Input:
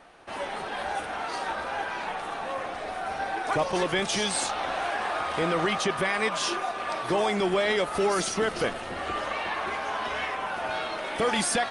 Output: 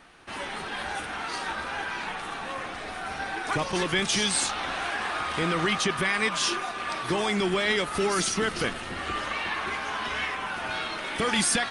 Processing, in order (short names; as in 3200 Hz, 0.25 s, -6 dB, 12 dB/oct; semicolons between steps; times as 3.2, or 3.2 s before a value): bell 630 Hz -10 dB 1.3 oct; gain +3.5 dB